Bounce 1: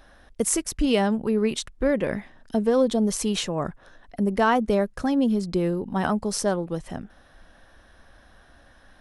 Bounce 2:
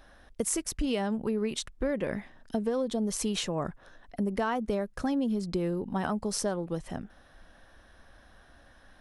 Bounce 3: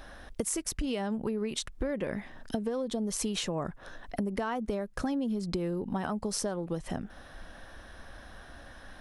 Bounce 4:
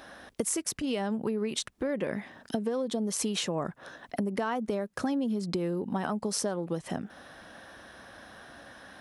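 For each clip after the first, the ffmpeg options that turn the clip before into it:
-af "acompressor=threshold=0.0708:ratio=5,volume=0.708"
-af "acompressor=threshold=0.0112:ratio=4,volume=2.51"
-af "highpass=140,volume=1.26"

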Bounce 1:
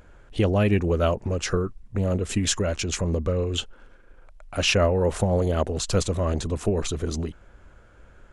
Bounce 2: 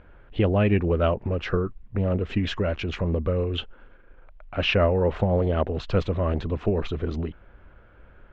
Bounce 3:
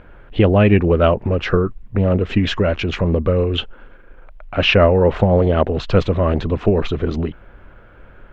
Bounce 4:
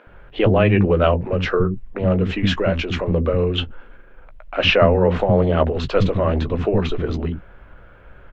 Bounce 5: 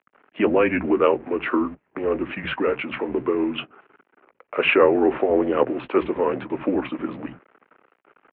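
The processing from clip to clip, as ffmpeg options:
-af "lowpass=f=3200:w=0.5412,lowpass=f=3200:w=1.3066"
-af "equalizer=f=66:t=o:w=0.38:g=-8.5,volume=2.66"
-filter_complex "[0:a]asplit=2[s0][s1];[s1]adelay=16,volume=0.282[s2];[s0][s2]amix=inputs=2:normalize=0,acrossover=split=280[s3][s4];[s3]adelay=70[s5];[s5][s4]amix=inputs=2:normalize=0,volume=0.891"
-af "aeval=exprs='sgn(val(0))*max(abs(val(0))-0.00891,0)':c=same,highpass=f=370:t=q:w=0.5412,highpass=f=370:t=q:w=1.307,lowpass=f=2800:t=q:w=0.5176,lowpass=f=2800:t=q:w=0.7071,lowpass=f=2800:t=q:w=1.932,afreqshift=-120"

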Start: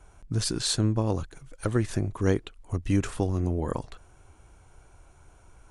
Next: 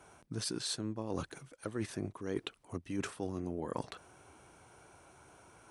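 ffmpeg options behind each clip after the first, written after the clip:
-af "highpass=170,bandreject=f=7000:w=11,areverse,acompressor=threshold=0.0178:ratio=16,areverse,volume=1.26"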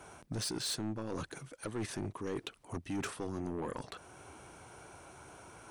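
-af "alimiter=level_in=1.41:limit=0.0631:level=0:latency=1:release=419,volume=0.708,asoftclip=type=tanh:threshold=0.0133,volume=2"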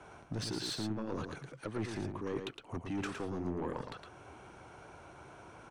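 -filter_complex "[0:a]acrossover=split=210[s0][s1];[s1]adynamicsmooth=sensitivity=4.5:basefreq=5000[s2];[s0][s2]amix=inputs=2:normalize=0,aecho=1:1:112:0.501"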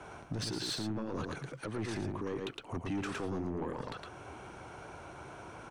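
-af "alimiter=level_in=2.99:limit=0.0631:level=0:latency=1:release=63,volume=0.335,volume=1.78"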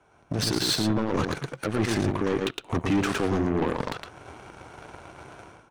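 -af "dynaudnorm=f=120:g=5:m=3.98,bandreject=f=182.3:t=h:w=4,bandreject=f=364.6:t=h:w=4,bandreject=f=546.9:t=h:w=4,bandreject=f=729.2:t=h:w=4,bandreject=f=911.5:t=h:w=4,bandreject=f=1093.8:t=h:w=4,bandreject=f=1276.1:t=h:w=4,bandreject=f=1458.4:t=h:w=4,bandreject=f=1640.7:t=h:w=4,bandreject=f=1823:t=h:w=4,bandreject=f=2005.3:t=h:w=4,bandreject=f=2187.6:t=h:w=4,bandreject=f=2369.9:t=h:w=4,bandreject=f=2552.2:t=h:w=4,bandreject=f=2734.5:t=h:w=4,bandreject=f=2916.8:t=h:w=4,bandreject=f=3099.1:t=h:w=4,bandreject=f=3281.4:t=h:w=4,bandreject=f=3463.7:t=h:w=4,bandreject=f=3646:t=h:w=4,bandreject=f=3828.3:t=h:w=4,bandreject=f=4010.6:t=h:w=4,aeval=exprs='0.178*(cos(1*acos(clip(val(0)/0.178,-1,1)))-cos(1*PI/2))+0.02*(cos(7*acos(clip(val(0)/0.178,-1,1)))-cos(7*PI/2))':c=same"

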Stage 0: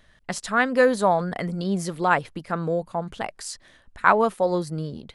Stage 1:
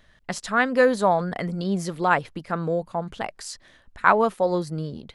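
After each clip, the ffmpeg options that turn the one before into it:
-af "equalizer=f=9400:t=o:w=0.58:g=-4"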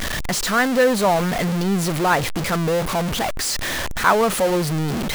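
-af "aeval=exprs='val(0)+0.5*0.133*sgn(val(0))':c=same,volume=0.891"

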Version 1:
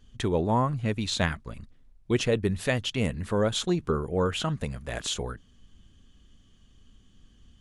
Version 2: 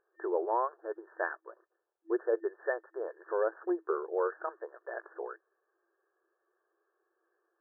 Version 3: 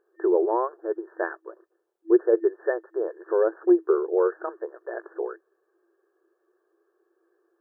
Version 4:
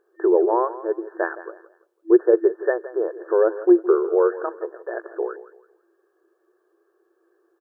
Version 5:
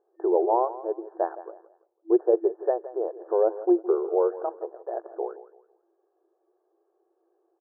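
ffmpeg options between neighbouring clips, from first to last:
-af "afftfilt=real='re*between(b*sr/4096,330,1800)':imag='im*between(b*sr/4096,330,1800)':win_size=4096:overlap=0.75,volume=0.668"
-af "equalizer=f=340:t=o:w=1.1:g=12,volume=1.26"
-af "aecho=1:1:167|334|501:0.168|0.0504|0.0151,volume=1.58"
-af "lowpass=f=770:t=q:w=4.1,volume=0.376"

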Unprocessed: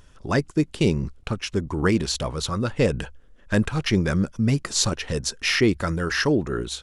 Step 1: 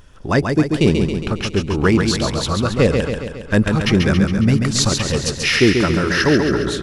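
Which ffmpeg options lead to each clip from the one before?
-filter_complex "[0:a]equalizer=f=7800:t=o:w=1.2:g=-3.5,asplit=2[s0][s1];[s1]aecho=0:1:137|274|411|548|685|822|959|1096:0.562|0.332|0.196|0.115|0.0681|0.0402|0.0237|0.014[s2];[s0][s2]amix=inputs=2:normalize=0,volume=1.88"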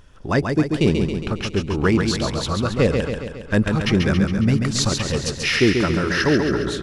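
-af "highshelf=f=8600:g=-4.5,volume=0.708"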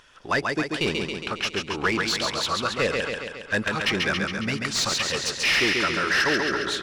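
-filter_complex "[0:a]tiltshelf=f=1400:g=-7,asplit=2[s0][s1];[s1]highpass=f=720:p=1,volume=8.91,asoftclip=type=tanh:threshold=0.841[s2];[s0][s2]amix=inputs=2:normalize=0,lowpass=f=2100:p=1,volume=0.501,volume=0.422"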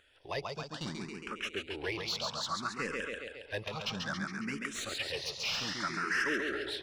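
-filter_complex "[0:a]asplit=2[s0][s1];[s1]afreqshift=0.61[s2];[s0][s2]amix=inputs=2:normalize=1,volume=0.376"

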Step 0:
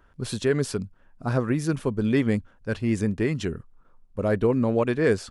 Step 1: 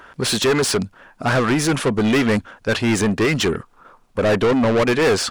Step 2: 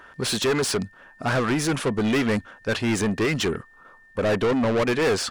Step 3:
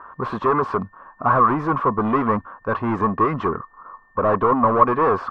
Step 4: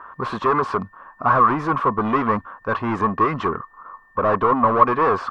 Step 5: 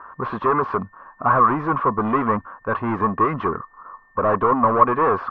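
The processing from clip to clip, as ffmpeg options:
-filter_complex "[0:a]asplit=2[s0][s1];[s1]highpass=f=720:p=1,volume=25.1,asoftclip=type=tanh:threshold=0.335[s2];[s0][s2]amix=inputs=2:normalize=0,lowpass=f=6700:p=1,volume=0.501"
-af "aeval=exprs='val(0)+0.00501*sin(2*PI*1800*n/s)':c=same,volume=0.562"
-af "lowpass=f=1100:t=q:w=11"
-af "highshelf=f=2200:g=11,volume=0.841"
-af "lowpass=2100"

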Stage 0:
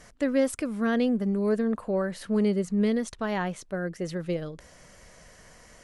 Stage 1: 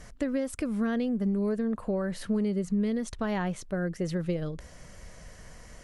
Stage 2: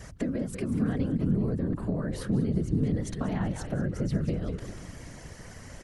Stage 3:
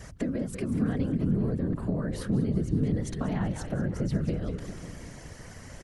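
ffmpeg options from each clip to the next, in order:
-af "acompressor=threshold=0.0398:ratio=6,lowshelf=f=160:g=10"
-filter_complex "[0:a]asplit=7[s0][s1][s2][s3][s4][s5][s6];[s1]adelay=191,afreqshift=-93,volume=0.282[s7];[s2]adelay=382,afreqshift=-186,volume=0.151[s8];[s3]adelay=573,afreqshift=-279,volume=0.0822[s9];[s4]adelay=764,afreqshift=-372,volume=0.0442[s10];[s5]adelay=955,afreqshift=-465,volume=0.024[s11];[s6]adelay=1146,afreqshift=-558,volume=0.0129[s12];[s0][s7][s8][s9][s10][s11][s12]amix=inputs=7:normalize=0,afftfilt=real='hypot(re,im)*cos(2*PI*random(0))':imag='hypot(re,im)*sin(2*PI*random(1))':win_size=512:overlap=0.75,acrossover=split=250[s13][s14];[s14]acompressor=threshold=0.00631:ratio=6[s15];[s13][s15]amix=inputs=2:normalize=0,volume=2.82"
-filter_complex "[0:a]asplit=2[s0][s1];[s1]adelay=548.1,volume=0.158,highshelf=f=4000:g=-12.3[s2];[s0][s2]amix=inputs=2:normalize=0"

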